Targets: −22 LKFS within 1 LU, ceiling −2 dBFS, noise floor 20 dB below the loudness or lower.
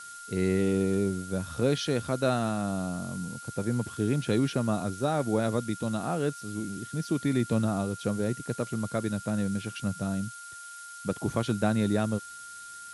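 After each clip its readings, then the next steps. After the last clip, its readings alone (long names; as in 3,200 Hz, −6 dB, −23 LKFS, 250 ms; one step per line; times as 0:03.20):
interfering tone 1,400 Hz; level of the tone −43 dBFS; background noise floor −44 dBFS; target noise floor −50 dBFS; integrated loudness −29.5 LKFS; sample peak −12.5 dBFS; target loudness −22.0 LKFS
→ notch filter 1,400 Hz, Q 30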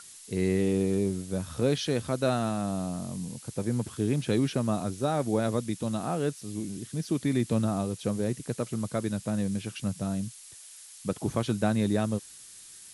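interfering tone none found; background noise floor −49 dBFS; target noise floor −50 dBFS
→ noise reduction from a noise print 6 dB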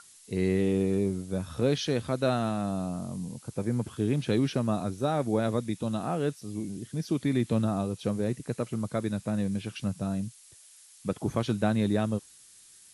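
background noise floor −55 dBFS; integrated loudness −30.0 LKFS; sample peak −13.0 dBFS; target loudness −22.0 LKFS
→ level +8 dB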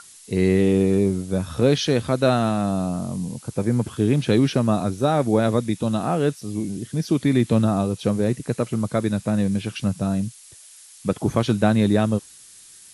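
integrated loudness −22.0 LKFS; sample peak −5.0 dBFS; background noise floor −47 dBFS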